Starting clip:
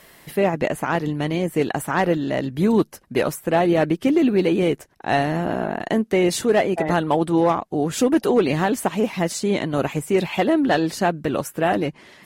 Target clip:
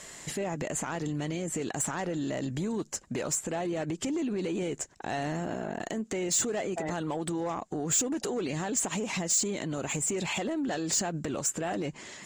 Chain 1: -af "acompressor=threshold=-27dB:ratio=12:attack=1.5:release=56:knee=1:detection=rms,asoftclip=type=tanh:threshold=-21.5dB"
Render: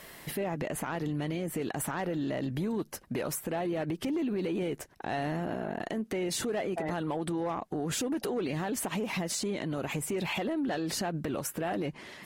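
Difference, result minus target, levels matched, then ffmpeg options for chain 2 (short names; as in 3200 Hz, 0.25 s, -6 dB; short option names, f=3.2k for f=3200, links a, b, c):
8000 Hz band -7.5 dB
-af "acompressor=threshold=-27dB:ratio=12:attack=1.5:release=56:knee=1:detection=rms,lowpass=f=7.2k:t=q:w=9.1,asoftclip=type=tanh:threshold=-21.5dB"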